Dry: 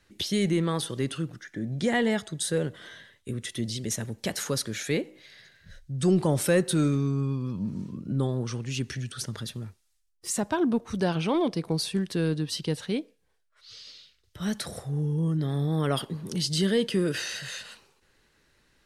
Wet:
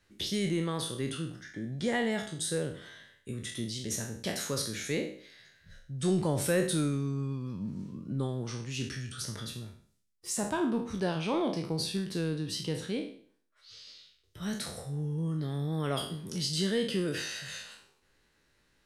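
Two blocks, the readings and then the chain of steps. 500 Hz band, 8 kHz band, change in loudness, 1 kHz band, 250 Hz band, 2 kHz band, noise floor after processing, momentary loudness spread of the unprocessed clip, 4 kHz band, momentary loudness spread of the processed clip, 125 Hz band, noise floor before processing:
-4.5 dB, -3.0 dB, -4.5 dB, -4.0 dB, -5.5 dB, -3.5 dB, -70 dBFS, 13 LU, -3.0 dB, 13 LU, -5.5 dB, -70 dBFS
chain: spectral trails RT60 0.51 s; gain -6 dB

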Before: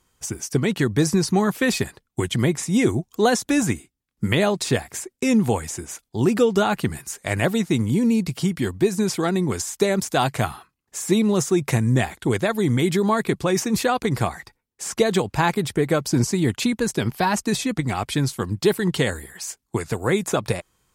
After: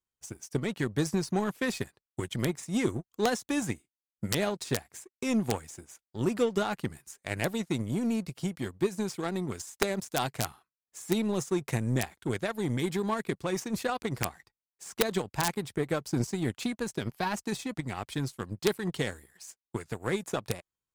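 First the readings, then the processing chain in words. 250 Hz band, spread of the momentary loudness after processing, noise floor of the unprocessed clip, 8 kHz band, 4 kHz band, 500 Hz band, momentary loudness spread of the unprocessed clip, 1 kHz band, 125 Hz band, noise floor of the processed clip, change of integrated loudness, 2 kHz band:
-10.5 dB, 10 LU, -75 dBFS, -10.5 dB, -9.0 dB, -10.0 dB, 9 LU, -10.0 dB, -10.5 dB, under -85 dBFS, -10.0 dB, -9.5 dB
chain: wrapped overs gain 7.5 dB; power-law curve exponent 1.4; gain -7 dB

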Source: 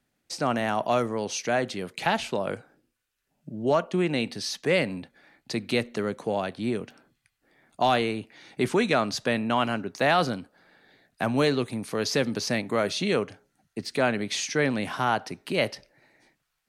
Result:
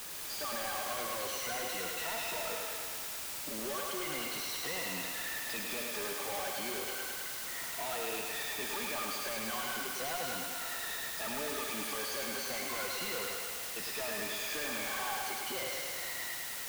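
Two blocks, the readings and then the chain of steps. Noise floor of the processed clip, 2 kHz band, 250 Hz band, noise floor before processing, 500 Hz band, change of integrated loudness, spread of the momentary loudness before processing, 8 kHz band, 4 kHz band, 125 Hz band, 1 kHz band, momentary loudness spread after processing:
-41 dBFS, -6.5 dB, -18.0 dB, -79 dBFS, -14.0 dB, -8.5 dB, 10 LU, +1.5 dB, -4.5 dB, -21.0 dB, -11.0 dB, 2 LU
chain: moving spectral ripple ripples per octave 2, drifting -0.35 Hz, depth 21 dB; de-esser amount 85%; low shelf 450 Hz -10.5 dB; compressor 2:1, threshold -46 dBFS, peak gain reduction 14.5 dB; overdrive pedal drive 31 dB, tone 4400 Hz, clips at -26.5 dBFS; requantised 6-bit, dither triangular; thinning echo 0.105 s, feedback 78%, high-pass 280 Hz, level -4 dB; gain -8 dB

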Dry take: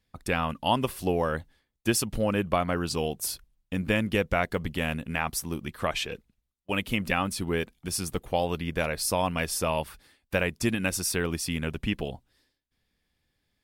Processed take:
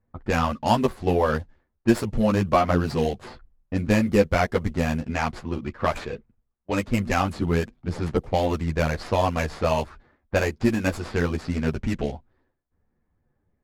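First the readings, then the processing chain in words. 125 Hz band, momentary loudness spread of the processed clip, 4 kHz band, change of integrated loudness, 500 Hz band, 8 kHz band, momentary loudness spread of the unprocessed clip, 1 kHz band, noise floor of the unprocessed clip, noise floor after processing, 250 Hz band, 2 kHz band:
+6.5 dB, 10 LU, -3.0 dB, +4.0 dB, +5.0 dB, -8.5 dB, 6 LU, +5.0 dB, -80 dBFS, -74 dBFS, +6.0 dB, +1.0 dB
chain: median filter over 15 samples; chorus voices 4, 1.4 Hz, delay 11 ms, depth 3 ms; low-pass opened by the level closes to 1400 Hz, open at -27.5 dBFS; gain +8.5 dB

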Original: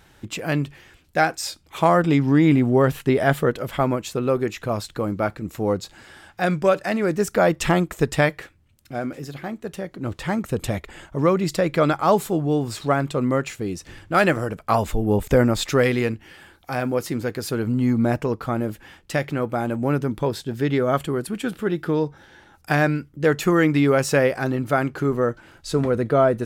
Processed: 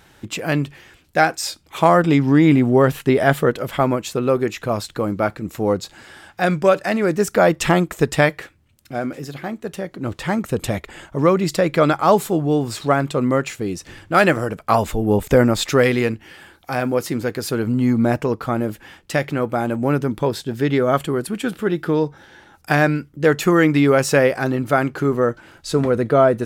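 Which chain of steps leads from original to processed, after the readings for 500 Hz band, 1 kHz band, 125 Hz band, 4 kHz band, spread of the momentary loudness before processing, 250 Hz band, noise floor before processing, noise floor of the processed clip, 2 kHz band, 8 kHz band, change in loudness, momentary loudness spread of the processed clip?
+3.5 dB, +3.5 dB, +2.0 dB, +3.5 dB, 12 LU, +3.0 dB, -55 dBFS, -53 dBFS, +3.5 dB, +3.5 dB, +3.0 dB, 12 LU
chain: low shelf 75 Hz -7 dB; gain +3.5 dB

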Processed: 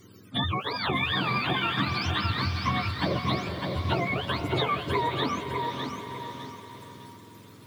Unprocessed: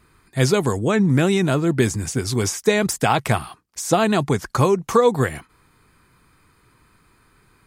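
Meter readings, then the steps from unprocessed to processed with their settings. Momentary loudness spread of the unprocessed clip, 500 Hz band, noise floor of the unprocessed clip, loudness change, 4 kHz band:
7 LU, -13.5 dB, -59 dBFS, -8.5 dB, +0.5 dB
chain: spectrum mirrored in octaves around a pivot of 680 Hz; compressor 5:1, threshold -33 dBFS, peak gain reduction 17.5 dB; on a send: diffused feedback echo 0.476 s, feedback 46%, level -8 dB; on the sum: lo-fi delay 0.605 s, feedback 35%, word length 10-bit, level -5 dB; gain +5.5 dB

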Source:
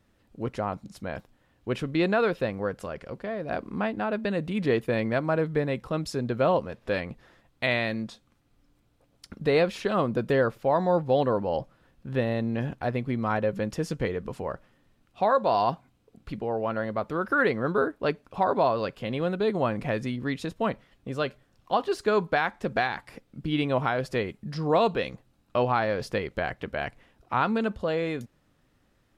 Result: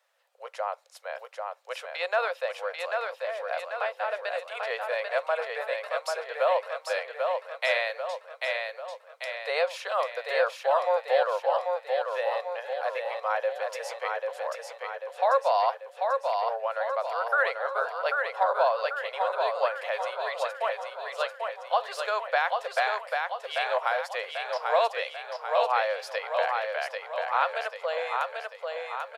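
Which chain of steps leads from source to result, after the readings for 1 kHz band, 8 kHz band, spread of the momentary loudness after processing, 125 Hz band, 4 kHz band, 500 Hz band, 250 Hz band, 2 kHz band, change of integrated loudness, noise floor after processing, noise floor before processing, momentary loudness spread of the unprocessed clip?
+2.0 dB, n/a, 10 LU, under -40 dB, +2.0 dB, -1.0 dB, under -40 dB, +2.0 dB, -1.5 dB, -51 dBFS, -67 dBFS, 12 LU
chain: steep high-pass 510 Hz 72 dB/oct; on a send: feedback echo 0.791 s, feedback 53%, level -4 dB

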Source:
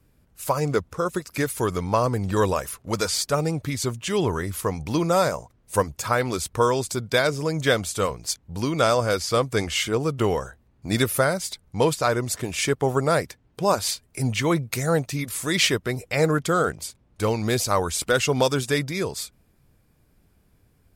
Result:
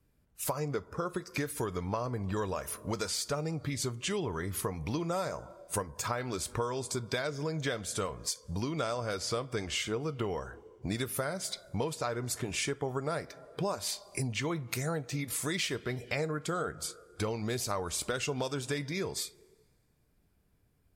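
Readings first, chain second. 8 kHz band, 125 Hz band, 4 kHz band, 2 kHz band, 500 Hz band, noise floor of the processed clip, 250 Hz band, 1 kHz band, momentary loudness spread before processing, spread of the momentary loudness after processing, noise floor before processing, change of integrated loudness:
-7.5 dB, -10.0 dB, -9.5 dB, -11.0 dB, -12.0 dB, -70 dBFS, -10.0 dB, -12.0 dB, 7 LU, 4 LU, -62 dBFS, -10.5 dB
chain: two-slope reverb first 0.23 s, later 1.9 s, from -18 dB, DRR 13 dB; spectral noise reduction 10 dB; compressor 6:1, threshold -31 dBFS, peak gain reduction 15.5 dB

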